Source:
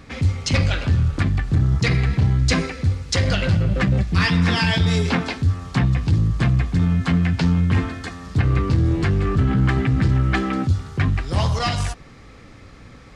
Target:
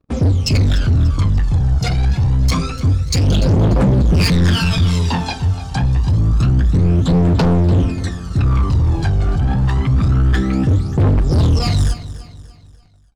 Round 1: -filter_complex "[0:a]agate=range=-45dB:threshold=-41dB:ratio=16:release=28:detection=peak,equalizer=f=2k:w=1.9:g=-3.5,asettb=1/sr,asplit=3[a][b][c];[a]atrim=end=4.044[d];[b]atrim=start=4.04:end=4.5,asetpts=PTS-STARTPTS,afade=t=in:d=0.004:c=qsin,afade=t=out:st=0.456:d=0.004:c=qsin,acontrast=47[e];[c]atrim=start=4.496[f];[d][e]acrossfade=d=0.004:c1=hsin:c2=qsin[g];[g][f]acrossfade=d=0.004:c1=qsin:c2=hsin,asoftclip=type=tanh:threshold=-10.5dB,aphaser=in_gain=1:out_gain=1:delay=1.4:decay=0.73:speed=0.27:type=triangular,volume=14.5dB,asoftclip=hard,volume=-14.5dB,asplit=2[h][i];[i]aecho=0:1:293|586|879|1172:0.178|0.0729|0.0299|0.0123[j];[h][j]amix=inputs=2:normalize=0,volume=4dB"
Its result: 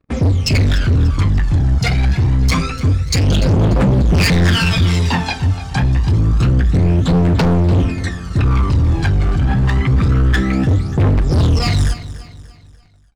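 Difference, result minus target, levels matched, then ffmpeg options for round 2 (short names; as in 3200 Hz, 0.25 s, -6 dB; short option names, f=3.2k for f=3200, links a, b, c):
2000 Hz band +5.0 dB; soft clip: distortion -7 dB
-filter_complex "[0:a]agate=range=-45dB:threshold=-41dB:ratio=16:release=28:detection=peak,equalizer=f=2k:w=1.9:g=-12,asettb=1/sr,asplit=3[a][b][c];[a]atrim=end=4.044[d];[b]atrim=start=4.04:end=4.5,asetpts=PTS-STARTPTS,afade=t=in:d=0.004:c=qsin,afade=t=out:st=0.456:d=0.004:c=qsin,acontrast=47[e];[c]atrim=start=4.496[f];[d][e]acrossfade=d=0.004:c1=hsin:c2=qsin[g];[g][f]acrossfade=d=0.004:c1=qsin:c2=hsin,asoftclip=type=tanh:threshold=-17dB,aphaser=in_gain=1:out_gain=1:delay=1.4:decay=0.73:speed=0.27:type=triangular,volume=14.5dB,asoftclip=hard,volume=-14.5dB,asplit=2[h][i];[i]aecho=0:1:293|586|879|1172:0.178|0.0729|0.0299|0.0123[j];[h][j]amix=inputs=2:normalize=0,volume=4dB"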